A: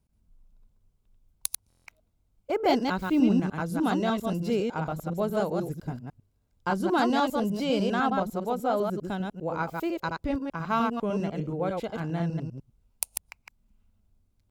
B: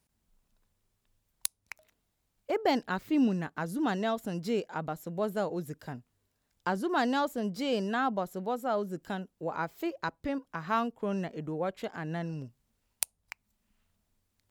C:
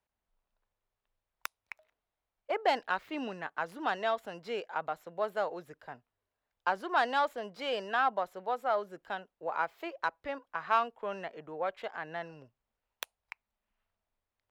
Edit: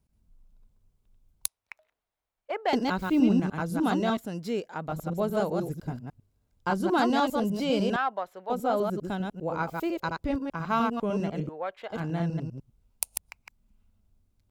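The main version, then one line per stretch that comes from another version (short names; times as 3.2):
A
1.48–2.73 from C
4.17–4.89 from B
7.96–8.5 from C
11.49–11.9 from C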